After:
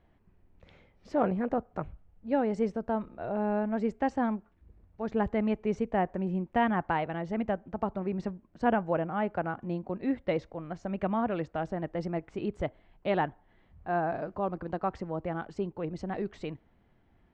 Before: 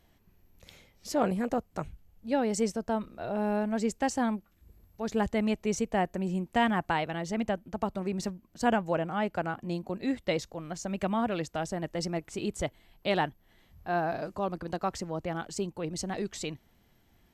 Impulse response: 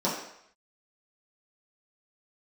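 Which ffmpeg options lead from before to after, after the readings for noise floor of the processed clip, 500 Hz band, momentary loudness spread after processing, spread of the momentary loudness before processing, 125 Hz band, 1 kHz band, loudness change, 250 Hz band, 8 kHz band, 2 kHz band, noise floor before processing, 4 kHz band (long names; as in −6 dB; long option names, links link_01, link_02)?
−66 dBFS, +0.5 dB, 9 LU, 8 LU, 0.0 dB, 0.0 dB, −0.5 dB, 0.0 dB, below −20 dB, −2.5 dB, −66 dBFS, −10.5 dB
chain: -filter_complex "[0:a]lowpass=1900,asplit=2[link_01][link_02];[1:a]atrim=start_sample=2205,asetrate=61740,aresample=44100[link_03];[link_02][link_03]afir=irnorm=-1:irlink=0,volume=-34.5dB[link_04];[link_01][link_04]amix=inputs=2:normalize=0"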